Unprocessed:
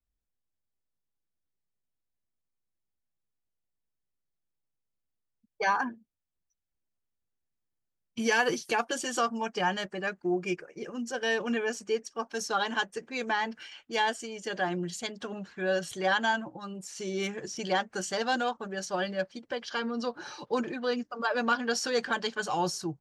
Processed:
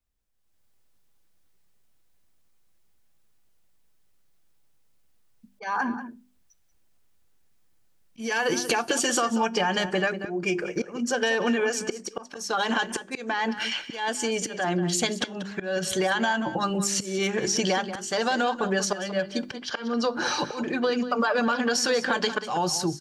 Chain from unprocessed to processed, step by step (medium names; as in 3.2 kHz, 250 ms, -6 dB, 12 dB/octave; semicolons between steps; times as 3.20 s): hum notches 50/100/150/200/250/300/350/400 Hz; peak limiter -24 dBFS, peak gain reduction 9.5 dB; level rider gain up to 13 dB; slow attack 603 ms; compression 6:1, threshold -27 dBFS, peak gain reduction 12 dB; feedback comb 100 Hz, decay 0.36 s, harmonics all, mix 30%; echo from a far wall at 32 m, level -12 dB; trim +7.5 dB